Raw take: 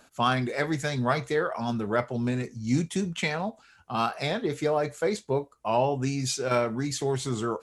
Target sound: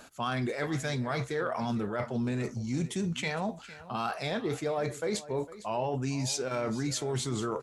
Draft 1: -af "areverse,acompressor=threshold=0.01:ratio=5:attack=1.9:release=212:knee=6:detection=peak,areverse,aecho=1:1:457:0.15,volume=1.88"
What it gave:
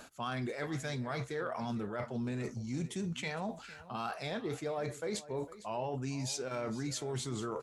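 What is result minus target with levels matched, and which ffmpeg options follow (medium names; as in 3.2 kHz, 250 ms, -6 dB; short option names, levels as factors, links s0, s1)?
compression: peak gain reduction +5.5 dB
-af "areverse,acompressor=threshold=0.0224:ratio=5:attack=1.9:release=212:knee=6:detection=peak,areverse,aecho=1:1:457:0.15,volume=1.88"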